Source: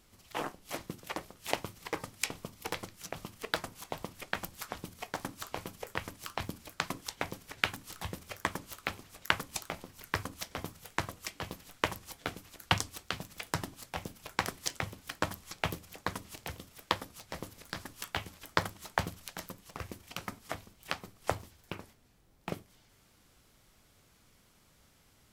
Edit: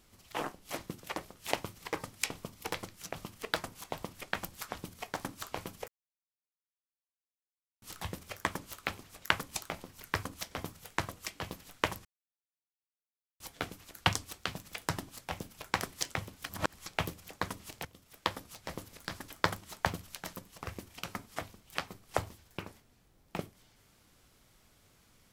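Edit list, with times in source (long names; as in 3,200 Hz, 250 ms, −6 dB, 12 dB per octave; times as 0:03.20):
0:05.88–0:07.82: silence
0:12.05: splice in silence 1.35 s
0:15.14–0:15.39: reverse
0:16.50–0:17.04: fade in, from −14.5 dB
0:17.93–0:18.41: remove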